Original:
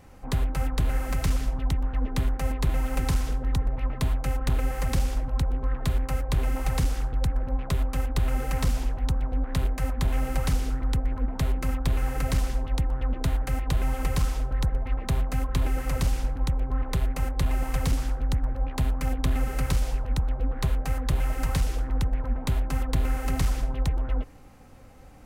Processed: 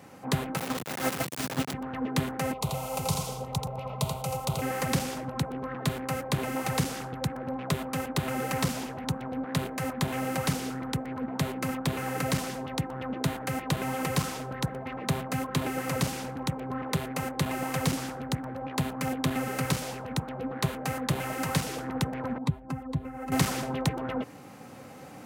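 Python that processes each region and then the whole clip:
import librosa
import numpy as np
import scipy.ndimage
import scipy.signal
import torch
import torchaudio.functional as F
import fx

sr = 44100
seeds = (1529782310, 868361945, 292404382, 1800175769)

y = fx.chain(x, sr, fx.over_compress(threshold_db=-30.0, ratio=-0.5),
    fx.quant_dither(seeds[0], bits=6, dither='none'), at=(0.57, 1.74))
y = fx.chain(y, sr, fx.fixed_phaser(hz=710.0, stages=4),
    fx.echo_single(ms=84, db=-5.5), at=(2.53, 4.62))
y = fx.chain(y, sr, fx.spec_expand(power=1.6),
    fx.peak_eq(hz=1000.0, db=4.0, octaves=0.27), at=(22.38, 23.32))
y = scipy.signal.sosfilt(scipy.signal.butter(4, 130.0, 'highpass', fs=sr, output='sos'), y)
y = fx.rider(y, sr, range_db=10, speed_s=2.0)
y = F.gain(torch.from_numpy(y), 3.5).numpy()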